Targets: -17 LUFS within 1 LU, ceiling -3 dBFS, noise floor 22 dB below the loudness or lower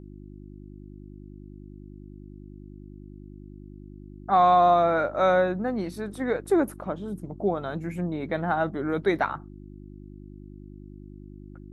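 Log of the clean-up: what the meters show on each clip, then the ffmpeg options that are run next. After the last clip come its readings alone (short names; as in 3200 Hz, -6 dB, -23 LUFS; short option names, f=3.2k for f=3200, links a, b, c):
hum 50 Hz; harmonics up to 350 Hz; hum level -41 dBFS; loudness -25.0 LUFS; peak -9.0 dBFS; loudness target -17.0 LUFS
-> -af "bandreject=f=50:t=h:w=4,bandreject=f=100:t=h:w=4,bandreject=f=150:t=h:w=4,bandreject=f=200:t=h:w=4,bandreject=f=250:t=h:w=4,bandreject=f=300:t=h:w=4,bandreject=f=350:t=h:w=4"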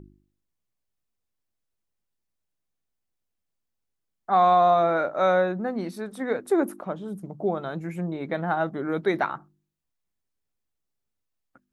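hum none; loudness -25.0 LUFS; peak -9.0 dBFS; loudness target -17.0 LUFS
-> -af "volume=8dB,alimiter=limit=-3dB:level=0:latency=1"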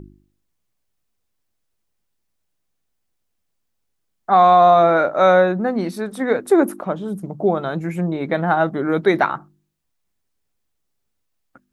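loudness -17.5 LUFS; peak -3.0 dBFS; noise floor -73 dBFS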